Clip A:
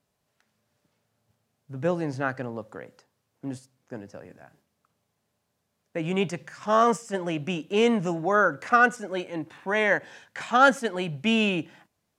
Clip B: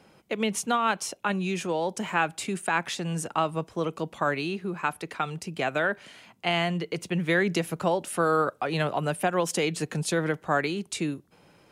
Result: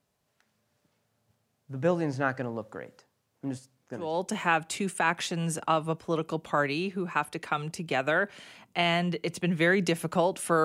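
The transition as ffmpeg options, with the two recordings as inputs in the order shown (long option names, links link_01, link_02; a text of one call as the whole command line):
ffmpeg -i cue0.wav -i cue1.wav -filter_complex "[0:a]apad=whole_dur=10.64,atrim=end=10.64,atrim=end=4.2,asetpts=PTS-STARTPTS[link_01];[1:a]atrim=start=1.6:end=8.32,asetpts=PTS-STARTPTS[link_02];[link_01][link_02]acrossfade=duration=0.28:curve1=tri:curve2=tri" out.wav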